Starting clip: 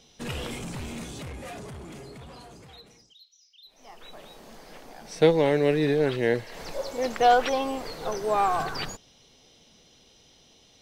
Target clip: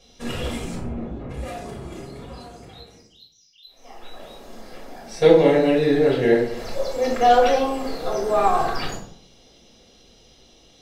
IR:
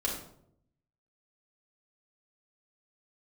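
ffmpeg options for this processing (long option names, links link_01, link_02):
-filter_complex "[0:a]asplit=3[link_01][link_02][link_03];[link_01]afade=type=out:start_time=0.74:duration=0.02[link_04];[link_02]lowpass=1100,afade=type=in:start_time=0.74:duration=0.02,afade=type=out:start_time=1.29:duration=0.02[link_05];[link_03]afade=type=in:start_time=1.29:duration=0.02[link_06];[link_04][link_05][link_06]amix=inputs=3:normalize=0[link_07];[1:a]atrim=start_sample=2205,asetrate=52920,aresample=44100[link_08];[link_07][link_08]afir=irnorm=-1:irlink=0"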